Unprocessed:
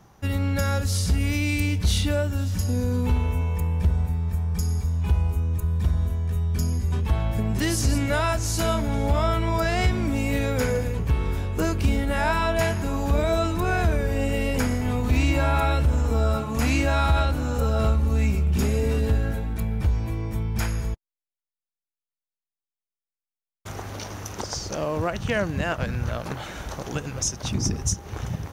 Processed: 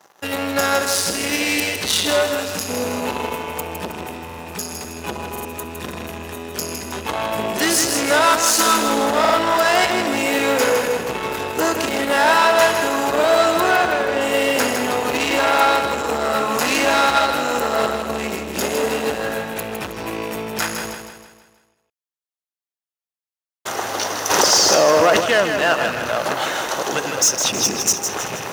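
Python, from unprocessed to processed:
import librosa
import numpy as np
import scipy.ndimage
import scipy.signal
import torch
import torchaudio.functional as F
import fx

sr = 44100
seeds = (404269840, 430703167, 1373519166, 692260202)

p1 = fx.rattle_buzz(x, sr, strikes_db=-28.0, level_db=-33.0)
p2 = fx.comb(p1, sr, ms=3.9, depth=0.84, at=(8.26, 9.06))
p3 = fx.air_absorb(p2, sr, metres=82.0, at=(13.71, 14.21))
p4 = fx.leveller(p3, sr, passes=3)
p5 = scipy.signal.sosfilt(scipy.signal.butter(2, 440.0, 'highpass', fs=sr, output='sos'), p4)
p6 = fx.notch(p5, sr, hz=2300.0, q=13.0)
p7 = p6 + fx.echo_feedback(p6, sr, ms=159, feedback_pct=47, wet_db=-7.0, dry=0)
p8 = fx.buffer_glitch(p7, sr, at_s=(4.25, 5.31, 9.2), block=2048, repeats=2)
p9 = fx.env_flatten(p8, sr, amount_pct=70, at=(24.29, 25.19), fade=0.02)
y = p9 * librosa.db_to_amplitude(3.0)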